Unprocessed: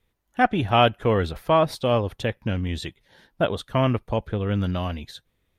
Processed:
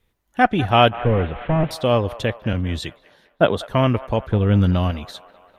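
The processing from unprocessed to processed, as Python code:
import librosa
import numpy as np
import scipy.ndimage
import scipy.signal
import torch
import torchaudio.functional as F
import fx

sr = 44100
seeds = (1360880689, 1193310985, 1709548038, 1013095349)

p1 = fx.delta_mod(x, sr, bps=16000, step_db=-35.0, at=(0.94, 1.71))
p2 = fx.low_shelf(p1, sr, hz=320.0, db=6.0, at=(4.31, 4.91))
p3 = p2 + fx.echo_wet_bandpass(p2, sr, ms=197, feedback_pct=63, hz=1100.0, wet_db=-15.5, dry=0)
p4 = fx.band_widen(p3, sr, depth_pct=40, at=(2.53, 3.59))
y = p4 * librosa.db_to_amplitude(3.5)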